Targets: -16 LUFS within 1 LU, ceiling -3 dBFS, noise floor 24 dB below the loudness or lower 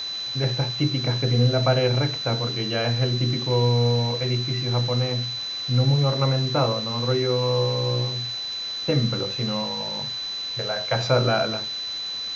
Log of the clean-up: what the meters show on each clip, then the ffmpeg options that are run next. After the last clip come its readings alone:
steady tone 4000 Hz; tone level -28 dBFS; noise floor -31 dBFS; noise floor target -47 dBFS; loudness -23.0 LUFS; peak -7.5 dBFS; loudness target -16.0 LUFS
-> -af "bandreject=f=4k:w=30"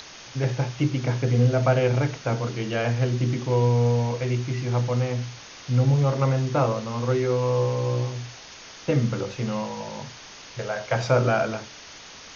steady tone none; noise floor -44 dBFS; noise floor target -49 dBFS
-> -af "afftdn=nr=6:nf=-44"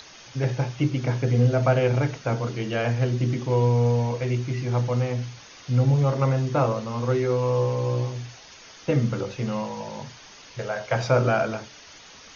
noise floor -47 dBFS; noise floor target -49 dBFS
-> -af "afftdn=nr=6:nf=-47"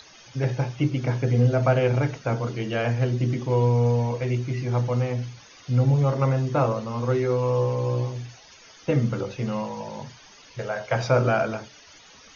noise floor -50 dBFS; loudness -24.5 LUFS; peak -8.0 dBFS; loudness target -16.0 LUFS
-> -af "volume=8.5dB,alimiter=limit=-3dB:level=0:latency=1"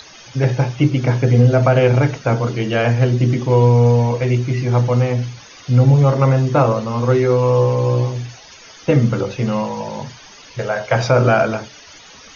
loudness -16.0 LUFS; peak -3.0 dBFS; noise floor -42 dBFS

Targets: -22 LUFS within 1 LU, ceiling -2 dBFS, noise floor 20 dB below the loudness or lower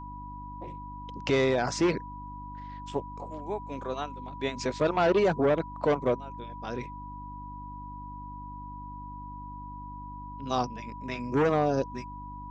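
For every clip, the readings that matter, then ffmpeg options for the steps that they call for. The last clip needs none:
hum 50 Hz; harmonics up to 300 Hz; hum level -41 dBFS; steady tone 980 Hz; tone level -41 dBFS; loudness -29.5 LUFS; peak -13.5 dBFS; loudness target -22.0 LUFS
-> -af "bandreject=f=50:t=h:w=4,bandreject=f=100:t=h:w=4,bandreject=f=150:t=h:w=4,bandreject=f=200:t=h:w=4,bandreject=f=250:t=h:w=4,bandreject=f=300:t=h:w=4"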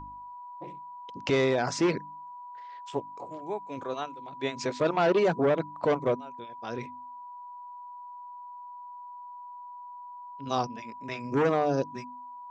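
hum none; steady tone 980 Hz; tone level -41 dBFS
-> -af "bandreject=f=980:w=30"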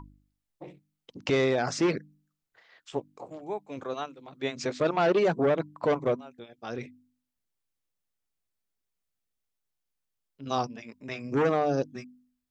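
steady tone none; loudness -29.0 LUFS; peak -14.0 dBFS; loudness target -22.0 LUFS
-> -af "volume=7dB"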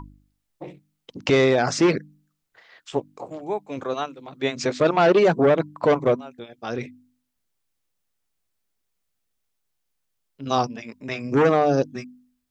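loudness -22.0 LUFS; peak -7.0 dBFS; noise floor -76 dBFS

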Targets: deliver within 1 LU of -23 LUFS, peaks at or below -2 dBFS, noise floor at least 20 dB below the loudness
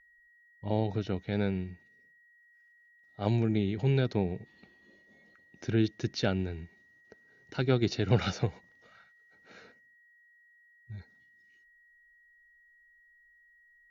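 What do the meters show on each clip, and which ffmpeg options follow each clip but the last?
steady tone 1900 Hz; tone level -60 dBFS; loudness -31.0 LUFS; peak -11.0 dBFS; loudness target -23.0 LUFS
-> -af "bandreject=f=1.9k:w=30"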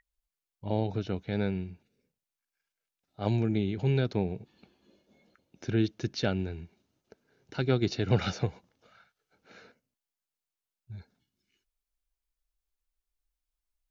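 steady tone none; loudness -31.0 LUFS; peak -11.0 dBFS; loudness target -23.0 LUFS
-> -af "volume=8dB"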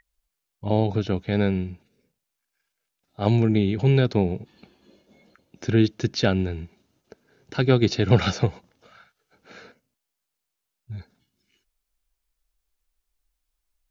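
loudness -23.0 LUFS; peak -3.0 dBFS; noise floor -82 dBFS

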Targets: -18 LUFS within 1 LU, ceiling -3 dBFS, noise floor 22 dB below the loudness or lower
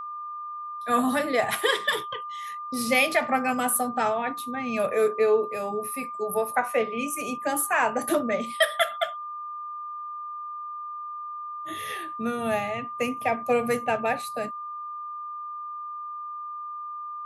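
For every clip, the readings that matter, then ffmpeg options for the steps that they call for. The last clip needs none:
steady tone 1200 Hz; tone level -33 dBFS; loudness -27.5 LUFS; peak -8.5 dBFS; loudness target -18.0 LUFS
-> -af "bandreject=f=1.2k:w=30"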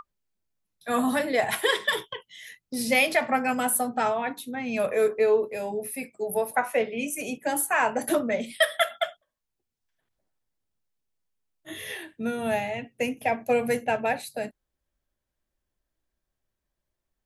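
steady tone none; loudness -26.5 LUFS; peak -8.5 dBFS; loudness target -18.0 LUFS
-> -af "volume=8.5dB,alimiter=limit=-3dB:level=0:latency=1"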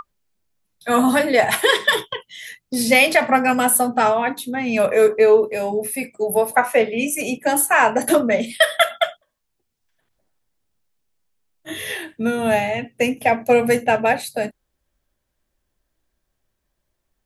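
loudness -18.0 LUFS; peak -3.0 dBFS; noise floor -75 dBFS

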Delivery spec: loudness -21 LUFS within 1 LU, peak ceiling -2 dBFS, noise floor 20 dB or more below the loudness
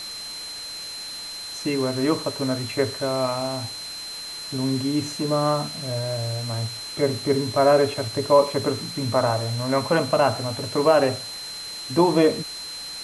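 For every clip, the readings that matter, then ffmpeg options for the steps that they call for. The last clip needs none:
steady tone 4100 Hz; tone level -33 dBFS; noise floor -35 dBFS; noise floor target -44 dBFS; loudness -23.5 LUFS; peak -5.5 dBFS; loudness target -21.0 LUFS
-> -af "bandreject=f=4.1k:w=30"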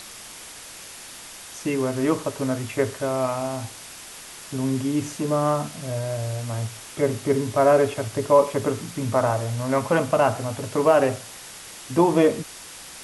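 steady tone none; noise floor -41 dBFS; noise floor target -44 dBFS
-> -af "afftdn=nr=6:nf=-41"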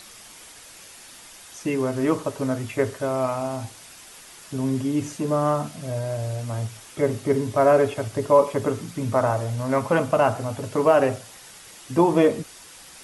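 noise floor -46 dBFS; loudness -23.5 LUFS; peak -5.5 dBFS; loudness target -21.0 LUFS
-> -af "volume=2.5dB"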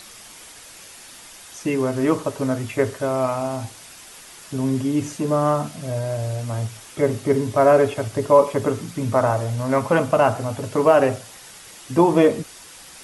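loudness -21.0 LUFS; peak -3.0 dBFS; noise floor -43 dBFS

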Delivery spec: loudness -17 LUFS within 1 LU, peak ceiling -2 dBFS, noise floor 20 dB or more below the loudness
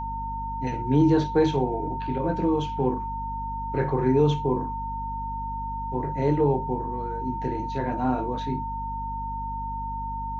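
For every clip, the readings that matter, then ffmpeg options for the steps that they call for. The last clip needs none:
hum 50 Hz; harmonics up to 250 Hz; hum level -33 dBFS; steady tone 910 Hz; tone level -30 dBFS; loudness -26.5 LUFS; peak -9.5 dBFS; loudness target -17.0 LUFS
-> -af "bandreject=f=50:t=h:w=6,bandreject=f=100:t=h:w=6,bandreject=f=150:t=h:w=6,bandreject=f=200:t=h:w=6,bandreject=f=250:t=h:w=6"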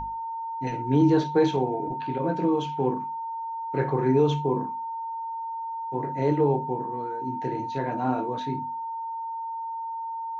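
hum none; steady tone 910 Hz; tone level -30 dBFS
-> -af "bandreject=f=910:w=30"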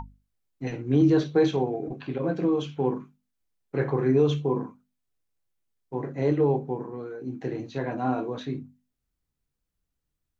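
steady tone none; loudness -27.0 LUFS; peak -11.0 dBFS; loudness target -17.0 LUFS
-> -af "volume=10dB,alimiter=limit=-2dB:level=0:latency=1"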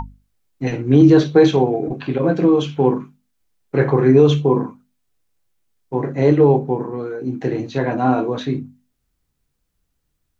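loudness -17.0 LUFS; peak -2.0 dBFS; noise floor -72 dBFS

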